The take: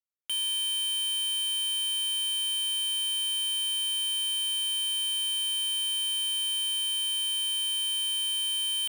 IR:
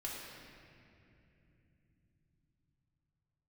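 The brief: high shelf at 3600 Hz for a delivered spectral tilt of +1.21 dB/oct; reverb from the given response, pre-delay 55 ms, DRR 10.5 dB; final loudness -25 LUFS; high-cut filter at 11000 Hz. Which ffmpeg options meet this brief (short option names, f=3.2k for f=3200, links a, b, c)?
-filter_complex "[0:a]lowpass=11k,highshelf=f=3.6k:g=-4,asplit=2[a][b];[1:a]atrim=start_sample=2205,adelay=55[c];[b][c]afir=irnorm=-1:irlink=0,volume=-11dB[d];[a][d]amix=inputs=2:normalize=0,volume=4dB"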